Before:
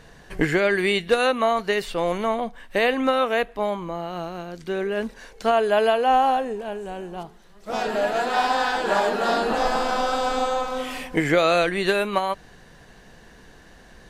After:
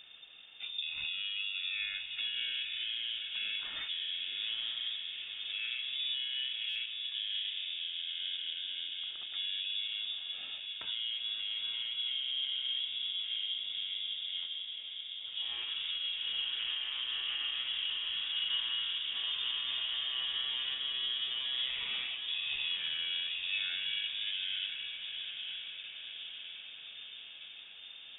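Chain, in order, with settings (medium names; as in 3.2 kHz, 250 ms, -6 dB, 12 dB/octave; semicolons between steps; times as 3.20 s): compression 3:1, threshold -27 dBFS, peak gain reduction 10.5 dB; peak limiter -22 dBFS, peak gain reduction 10 dB; small resonant body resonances 1.4/2 kHz, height 10 dB, ringing for 20 ms; reverberation RT60 4.1 s, pre-delay 46 ms, DRR 9 dB; speed mistake 15 ips tape played at 7.5 ips; echo that smears into a reverb 936 ms, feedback 60%, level -6 dB; frequency inversion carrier 3.6 kHz; buffer glitch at 6.69 s, samples 256, times 10; trim -8.5 dB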